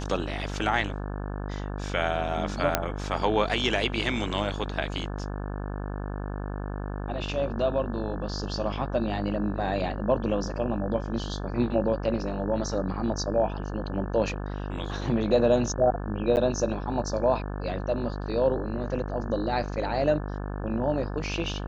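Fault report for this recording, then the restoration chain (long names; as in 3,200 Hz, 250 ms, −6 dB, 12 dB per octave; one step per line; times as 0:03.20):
mains buzz 50 Hz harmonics 35 −33 dBFS
0:02.75: click −5 dBFS
0:16.36–0:16.37: drop-out 9.6 ms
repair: click removal
hum removal 50 Hz, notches 35
repair the gap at 0:16.36, 9.6 ms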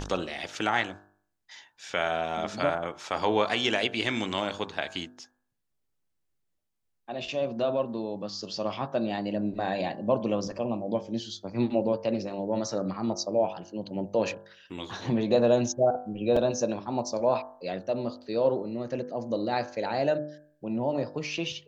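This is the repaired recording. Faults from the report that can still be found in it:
none of them is left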